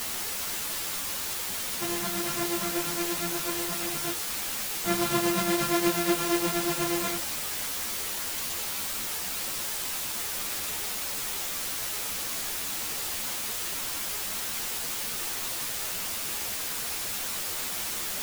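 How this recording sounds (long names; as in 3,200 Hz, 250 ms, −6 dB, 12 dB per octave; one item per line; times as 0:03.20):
a buzz of ramps at a fixed pitch in blocks of 128 samples
tremolo triangle 8.4 Hz, depth 70%
a quantiser's noise floor 6 bits, dither triangular
a shimmering, thickened sound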